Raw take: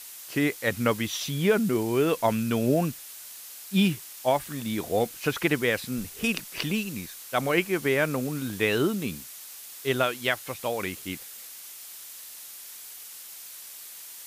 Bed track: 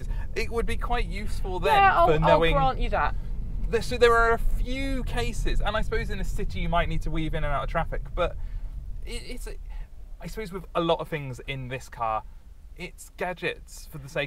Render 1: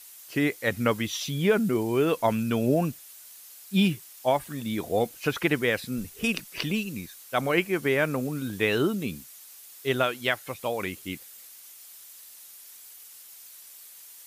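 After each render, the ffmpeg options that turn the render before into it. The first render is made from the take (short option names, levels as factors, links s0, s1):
-af "afftdn=nr=7:nf=-44"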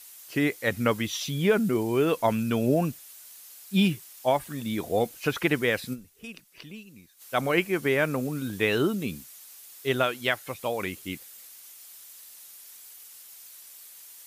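-filter_complex "[0:a]asplit=3[s0][s1][s2];[s0]atrim=end=6.13,asetpts=PTS-STARTPTS,afade=t=out:st=5.93:d=0.2:c=exp:silence=0.177828[s3];[s1]atrim=start=6.13:end=7.02,asetpts=PTS-STARTPTS,volume=0.178[s4];[s2]atrim=start=7.02,asetpts=PTS-STARTPTS,afade=t=in:d=0.2:c=exp:silence=0.177828[s5];[s3][s4][s5]concat=n=3:v=0:a=1"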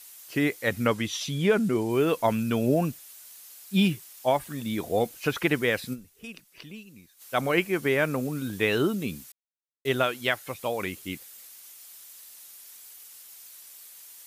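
-filter_complex "[0:a]asettb=1/sr,asplit=3[s0][s1][s2];[s0]atrim=end=0.874[s3];[s1]atrim=start=0.87:end=1.9,asetpts=PTS-STARTPTS,afade=t=in:d=0.004:c=qsin,afade=t=out:st=1.026:d=0.004:c=qsin,lowpass=11000[s4];[s2]atrim=start=1.896[s5];[s3][s4]acrossfade=d=0.004:c1=hsin:c2=qsin[s6];[s6][s5]acrossfade=d=0.004:c1=qsin:c2=hsin,asplit=3[s7][s8][s9];[s7]atrim=end=9.32,asetpts=PTS-STARTPTS,afade=t=out:st=9.316:d=0.004:c=hsin[s10];[s8]atrim=start=9.32:end=9.85,asetpts=PTS-STARTPTS,volume=0[s11];[s9]atrim=start=9.85,asetpts=PTS-STARTPTS,afade=t=in:d=0.004:c=hsin[s12];[s10][s11][s12]concat=n=3:v=0:a=1"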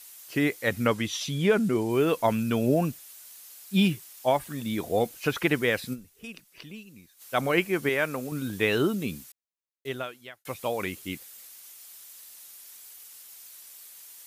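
-filter_complex "[0:a]asettb=1/sr,asplit=3[s0][s1][s2];[s0]atrim=end=7.894[s3];[s1]atrim=start=7.89:end=8.32,asetpts=PTS-STARTPTS,afade=t=in:d=0.004:c=qsin,afade=t=out:st=0.426:d=0.004:c=qsin,lowshelf=f=370:g=-8.5[s4];[s2]atrim=start=8.316[s5];[s3][s4]acrossfade=d=0.004:c1=hsin:c2=qsin[s6];[s6][s5]acrossfade=d=0.004:c1=qsin:c2=hsin,asplit=2[s7][s8];[s7]atrim=end=10.45,asetpts=PTS-STARTPTS,afade=t=out:st=9.14:d=1.31[s9];[s8]atrim=start=10.45,asetpts=PTS-STARTPTS,afade=t=in:d=0.004:c=hsin[s10];[s9][s10]concat=n=2:v=0:a=1"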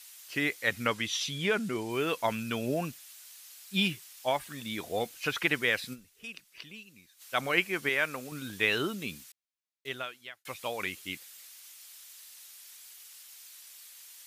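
-af "lowpass=f=2200:p=1,tiltshelf=f=1400:g=-9.5"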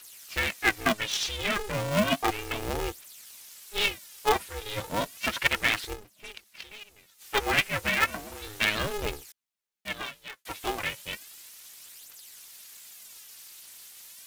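-af "aphaser=in_gain=1:out_gain=1:delay=3.7:decay=0.67:speed=0.33:type=triangular,aeval=exprs='val(0)*sgn(sin(2*PI*210*n/s))':c=same"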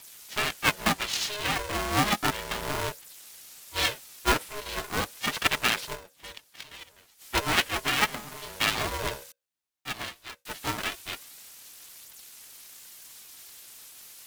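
-af "afreqshift=33,aeval=exprs='val(0)*sgn(sin(2*PI*520*n/s))':c=same"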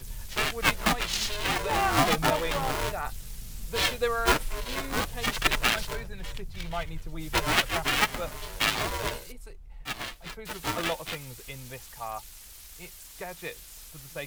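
-filter_complex "[1:a]volume=0.355[s0];[0:a][s0]amix=inputs=2:normalize=0"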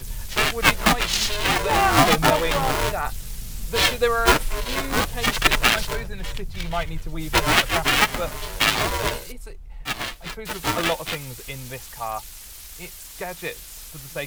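-af "volume=2.24,alimiter=limit=0.794:level=0:latency=1"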